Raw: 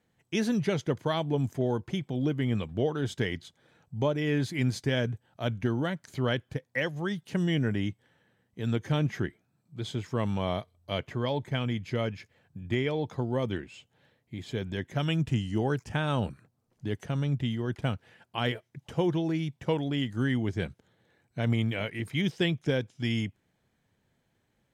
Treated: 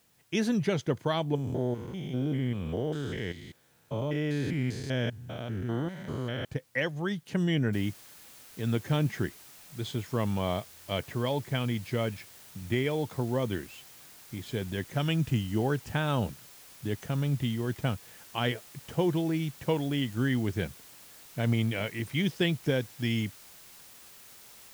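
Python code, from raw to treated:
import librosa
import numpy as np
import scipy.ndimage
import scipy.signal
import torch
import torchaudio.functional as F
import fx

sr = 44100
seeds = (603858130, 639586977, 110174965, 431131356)

y = fx.spec_steps(x, sr, hold_ms=200, at=(1.35, 6.45))
y = fx.noise_floor_step(y, sr, seeds[0], at_s=7.73, before_db=-68, after_db=-52, tilt_db=0.0)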